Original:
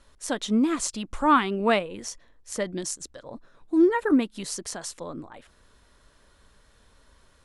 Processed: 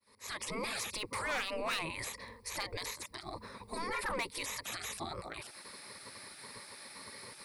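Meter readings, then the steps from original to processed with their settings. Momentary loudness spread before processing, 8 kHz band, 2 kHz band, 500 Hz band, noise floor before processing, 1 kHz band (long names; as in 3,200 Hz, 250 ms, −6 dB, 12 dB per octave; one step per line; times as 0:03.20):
17 LU, −8.0 dB, −5.0 dB, −14.5 dB, −60 dBFS, −12.5 dB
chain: fade in at the beginning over 0.75 s
EQ curve with evenly spaced ripples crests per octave 0.91, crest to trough 15 dB
gate on every frequency bin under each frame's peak −20 dB weak
soft clipping −34 dBFS, distortion −9 dB
brickwall limiter −43.5 dBFS, peak gain reduction 9.5 dB
level +13 dB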